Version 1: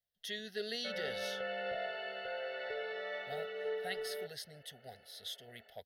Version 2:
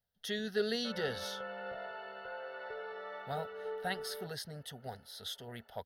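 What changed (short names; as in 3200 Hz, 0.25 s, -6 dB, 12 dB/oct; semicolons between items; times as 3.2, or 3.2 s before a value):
speech +10.5 dB; master: add EQ curve 280 Hz 0 dB, 710 Hz -6 dB, 1000 Hz +14 dB, 2000 Hz -11 dB, 4900 Hz -8 dB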